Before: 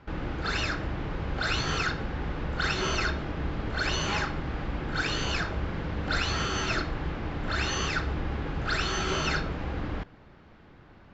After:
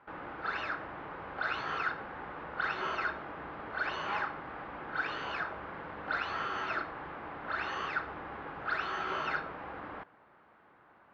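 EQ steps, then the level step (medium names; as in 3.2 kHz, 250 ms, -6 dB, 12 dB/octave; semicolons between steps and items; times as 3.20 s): band-pass filter 1.1 kHz, Q 1.1; distance through air 130 m; 0.0 dB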